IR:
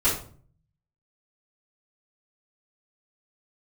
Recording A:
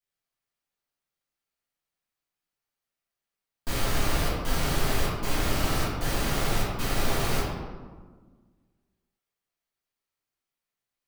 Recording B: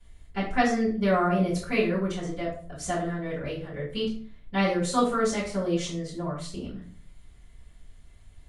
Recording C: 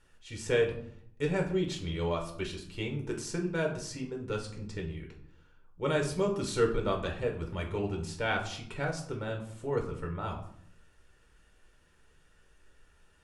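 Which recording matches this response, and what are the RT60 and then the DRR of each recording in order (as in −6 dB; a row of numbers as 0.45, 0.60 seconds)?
B; 1.5, 0.45, 0.65 seconds; −10.5, −12.5, 1.5 decibels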